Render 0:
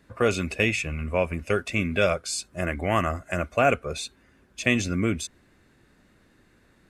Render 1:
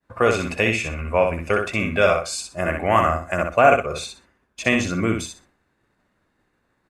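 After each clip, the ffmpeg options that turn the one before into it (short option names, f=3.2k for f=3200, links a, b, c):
-af "equalizer=f=930:t=o:w=1.7:g=8.5,agate=range=-33dB:threshold=-48dB:ratio=3:detection=peak,aecho=1:1:62|124|186:0.562|0.124|0.0272"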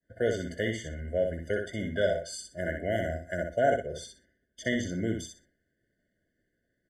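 -af "afftfilt=real='re*eq(mod(floor(b*sr/1024/720),2),0)':imag='im*eq(mod(floor(b*sr/1024/720),2),0)':win_size=1024:overlap=0.75,volume=-8.5dB"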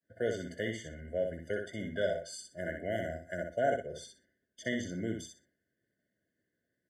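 -af "highpass=96,volume=-5dB"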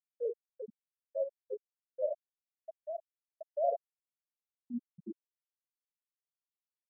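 -af "afftfilt=real='re*gte(hypot(re,im),0.178)':imag='im*gte(hypot(re,im),0.178)':win_size=1024:overlap=0.75,agate=range=-33dB:threshold=-58dB:ratio=3:detection=peak"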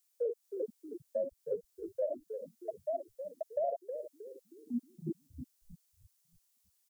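-filter_complex "[0:a]bass=f=250:g=-11,treble=f=4k:g=13,acrossover=split=220[a][b];[b]acompressor=threshold=-41dB:ratio=6[c];[a][c]amix=inputs=2:normalize=0,asplit=6[d][e][f][g][h][i];[e]adelay=315,afreqshift=-82,volume=-8dB[j];[f]adelay=630,afreqshift=-164,volume=-16dB[k];[g]adelay=945,afreqshift=-246,volume=-23.9dB[l];[h]adelay=1260,afreqshift=-328,volume=-31.9dB[m];[i]adelay=1575,afreqshift=-410,volume=-39.8dB[n];[d][j][k][l][m][n]amix=inputs=6:normalize=0,volume=9dB"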